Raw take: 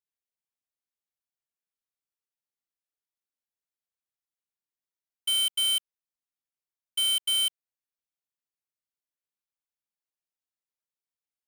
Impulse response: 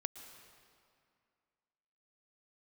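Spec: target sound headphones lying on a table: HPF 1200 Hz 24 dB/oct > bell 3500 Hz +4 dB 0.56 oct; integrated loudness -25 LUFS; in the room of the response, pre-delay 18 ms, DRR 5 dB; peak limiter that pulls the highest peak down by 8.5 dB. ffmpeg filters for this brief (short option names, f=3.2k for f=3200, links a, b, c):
-filter_complex "[0:a]alimiter=level_in=9dB:limit=-24dB:level=0:latency=1,volume=-9dB,asplit=2[a][b];[1:a]atrim=start_sample=2205,adelay=18[c];[b][c]afir=irnorm=-1:irlink=0,volume=-3.5dB[d];[a][d]amix=inputs=2:normalize=0,highpass=f=1.2k:w=0.5412,highpass=f=1.2k:w=1.3066,equalizer=f=3.5k:t=o:w=0.56:g=4,volume=9.5dB"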